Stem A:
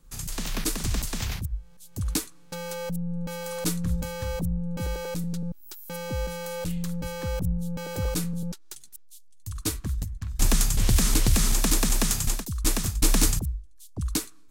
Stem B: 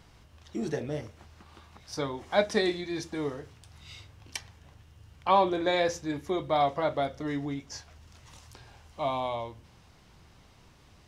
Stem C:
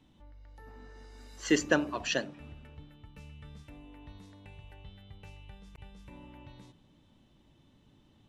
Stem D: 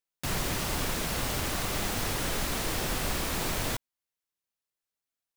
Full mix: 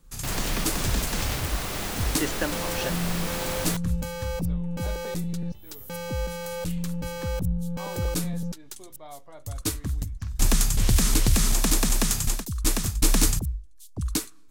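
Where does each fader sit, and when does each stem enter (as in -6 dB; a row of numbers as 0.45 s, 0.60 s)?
+0.5 dB, -19.0 dB, -3.5 dB, 0.0 dB; 0.00 s, 2.50 s, 0.70 s, 0.00 s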